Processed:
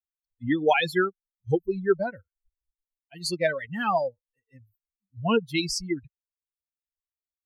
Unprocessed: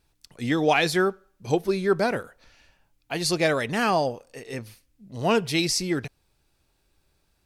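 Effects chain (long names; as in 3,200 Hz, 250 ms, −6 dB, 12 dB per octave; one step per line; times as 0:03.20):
spectral dynamics exaggerated over time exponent 3
high-shelf EQ 4,900 Hz −7.5 dB
level +4 dB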